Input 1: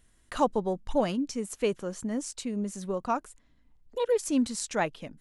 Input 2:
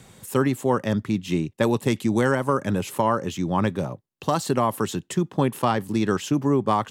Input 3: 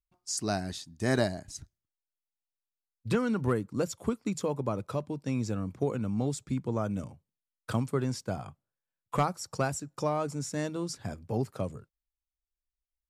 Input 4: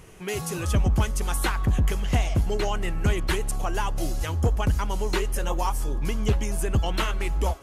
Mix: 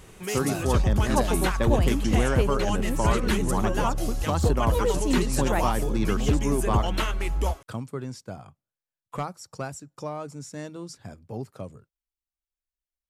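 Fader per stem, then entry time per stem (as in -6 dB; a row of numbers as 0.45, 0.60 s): -0.5, -5.5, -4.0, -1.0 dB; 0.75, 0.00, 0.00, 0.00 s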